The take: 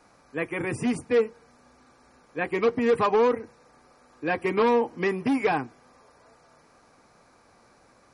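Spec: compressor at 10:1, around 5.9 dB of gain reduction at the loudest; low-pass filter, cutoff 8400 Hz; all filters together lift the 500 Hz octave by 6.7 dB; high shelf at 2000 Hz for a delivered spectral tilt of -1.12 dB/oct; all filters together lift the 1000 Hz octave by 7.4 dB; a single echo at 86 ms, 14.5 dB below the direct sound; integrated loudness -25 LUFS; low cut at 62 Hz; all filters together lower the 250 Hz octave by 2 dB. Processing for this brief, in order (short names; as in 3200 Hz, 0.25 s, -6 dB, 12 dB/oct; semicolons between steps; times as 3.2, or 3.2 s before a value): HPF 62 Hz; LPF 8400 Hz; bell 250 Hz -5 dB; bell 500 Hz +7.5 dB; bell 1000 Hz +8 dB; high shelf 2000 Hz -6 dB; compressor 10:1, threshold -16 dBFS; echo 86 ms -14.5 dB; gain -1 dB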